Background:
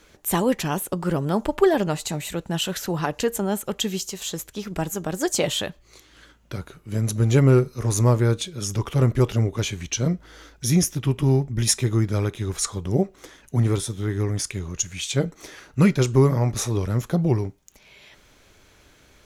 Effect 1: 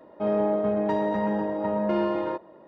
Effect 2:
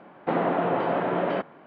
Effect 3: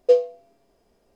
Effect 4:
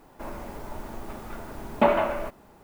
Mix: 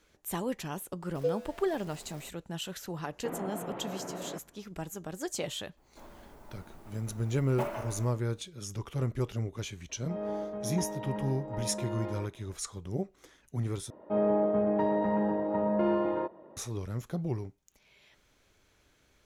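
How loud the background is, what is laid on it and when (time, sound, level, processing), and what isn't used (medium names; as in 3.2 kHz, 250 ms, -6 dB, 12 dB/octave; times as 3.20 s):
background -12.5 dB
1.15 s: add 3 -15 dB + jump at every zero crossing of -32 dBFS
2.97 s: add 2 -17 dB + bass shelf 250 Hz +9 dB
5.77 s: add 4 -14.5 dB + block-companded coder 5-bit
9.89 s: add 1 -10.5 dB + tremolo 2.3 Hz, depth 31%
13.90 s: replace with 1 -2 dB + low-pass 1.6 kHz 6 dB/octave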